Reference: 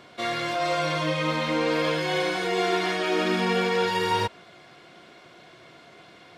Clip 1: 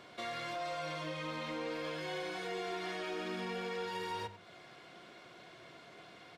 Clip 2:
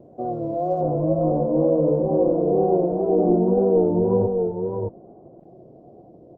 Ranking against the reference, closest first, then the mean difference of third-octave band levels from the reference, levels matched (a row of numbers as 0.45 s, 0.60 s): 1, 2; 4.0 dB, 16.0 dB